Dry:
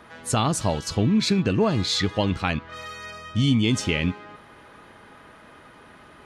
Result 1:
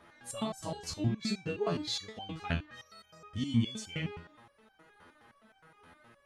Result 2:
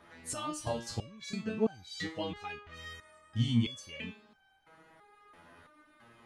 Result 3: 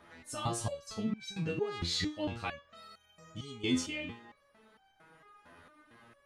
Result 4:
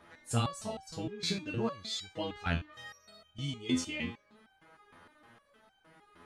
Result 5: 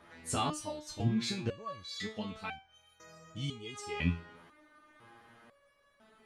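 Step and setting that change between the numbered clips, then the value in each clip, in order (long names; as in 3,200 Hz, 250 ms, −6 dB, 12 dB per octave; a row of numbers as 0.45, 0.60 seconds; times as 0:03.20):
step-sequenced resonator, speed: 9.6, 3, 4.4, 6.5, 2 Hertz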